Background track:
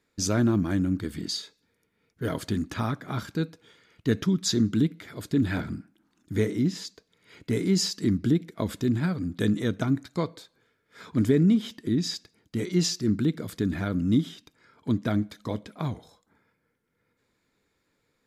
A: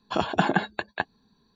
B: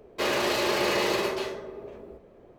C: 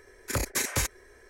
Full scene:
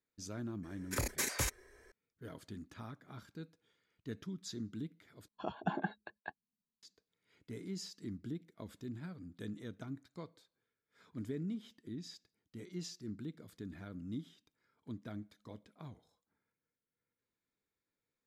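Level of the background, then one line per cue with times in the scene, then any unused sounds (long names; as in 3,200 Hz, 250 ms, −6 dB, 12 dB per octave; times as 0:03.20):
background track −19.5 dB
0:00.63: mix in C −7 dB
0:05.28: overwrite with A −13 dB + every bin expanded away from the loudest bin 1.5 to 1
not used: B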